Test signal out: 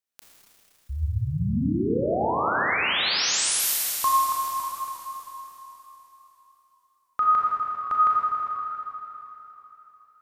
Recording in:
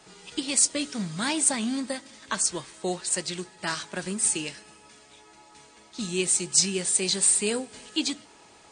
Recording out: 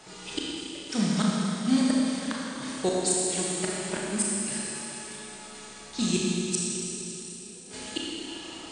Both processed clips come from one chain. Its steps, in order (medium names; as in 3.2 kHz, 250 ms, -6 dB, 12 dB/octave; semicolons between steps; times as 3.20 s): inverted gate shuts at -18 dBFS, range -35 dB; Schroeder reverb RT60 3.4 s, combs from 27 ms, DRR -4.5 dB; modulated delay 561 ms, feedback 31%, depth 162 cents, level -21.5 dB; trim +3 dB